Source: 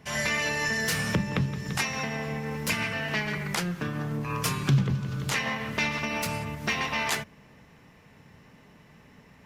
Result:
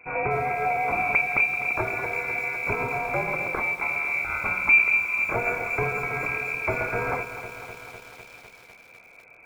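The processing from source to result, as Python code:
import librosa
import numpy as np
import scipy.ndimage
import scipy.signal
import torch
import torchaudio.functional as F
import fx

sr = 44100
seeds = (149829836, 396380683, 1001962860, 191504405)

y = fx.fixed_phaser(x, sr, hz=1600.0, stages=4)
y = fx.freq_invert(y, sr, carrier_hz=2500)
y = fx.echo_crushed(y, sr, ms=251, feedback_pct=80, bits=8, wet_db=-11.5)
y = y * librosa.db_to_amplitude(4.5)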